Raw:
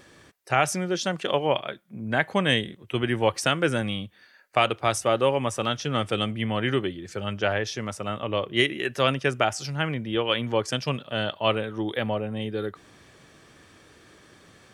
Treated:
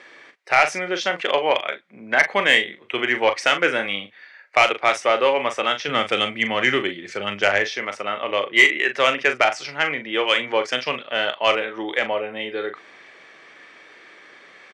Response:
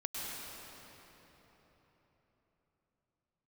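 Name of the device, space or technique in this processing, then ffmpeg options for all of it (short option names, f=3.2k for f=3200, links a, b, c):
intercom: -filter_complex "[0:a]highpass=440,lowpass=4.1k,equalizer=f=2.1k:t=o:w=0.47:g=10,asoftclip=type=tanh:threshold=-9.5dB,asplit=2[a][b];[b]adelay=40,volume=-9dB[c];[a][c]amix=inputs=2:normalize=0,asettb=1/sr,asplit=3[d][e][f];[d]atrim=end=5.884[g];[e]atrim=start=5.88:end=7.67,asetpts=PTS-STARTPTS,afade=t=in:d=0.004:c=qsin,afade=t=out:st=1.786:d=0.004:c=qsin,bass=f=250:g=8,treble=f=4k:g=6[h];[f]atrim=start=7.666[i];[g][h]acrossfade=d=0.004:c1=hsin:c2=qsin[j];[j][i]acrossfade=d=0.004:c1=qsin:c2=hsin,volume=5.5dB"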